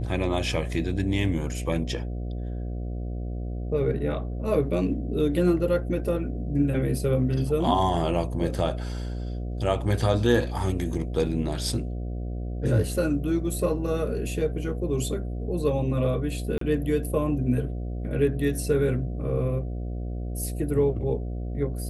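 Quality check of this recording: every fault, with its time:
buzz 60 Hz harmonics 12 -31 dBFS
16.58–16.61 gap 33 ms

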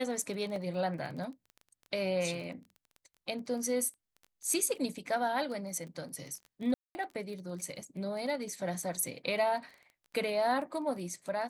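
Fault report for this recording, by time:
crackle 16/s -41 dBFS
0.56 gap 2.3 ms
6.74–6.95 gap 0.21 s

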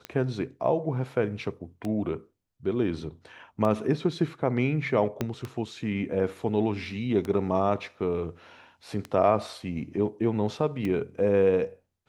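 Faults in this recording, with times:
tick 33 1/3 rpm -19 dBFS
5.21 pop -14 dBFS

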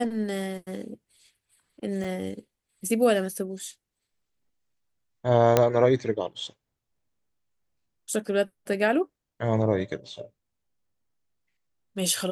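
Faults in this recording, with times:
2.04 gap 4.4 ms
5.57 pop -5 dBFS

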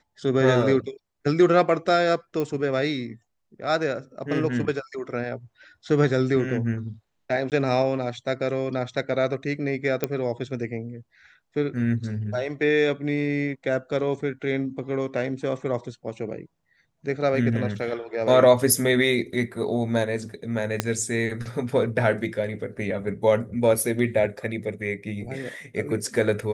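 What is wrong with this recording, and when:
2.4 pop -16 dBFS
7.5–7.52 gap 18 ms
10.04 pop -10 dBFS
20.8 pop -6 dBFS

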